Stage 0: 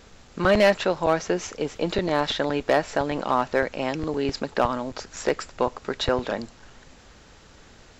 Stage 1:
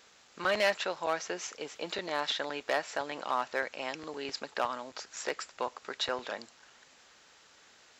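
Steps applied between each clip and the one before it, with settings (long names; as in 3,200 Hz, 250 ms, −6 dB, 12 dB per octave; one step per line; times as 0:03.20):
high-pass filter 1,200 Hz 6 dB per octave
level −4 dB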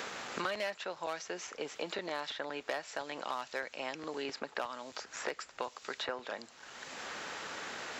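multiband upward and downward compressor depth 100%
level −5.5 dB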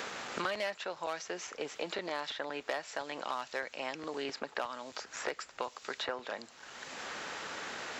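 highs frequency-modulated by the lows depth 0.11 ms
level +1 dB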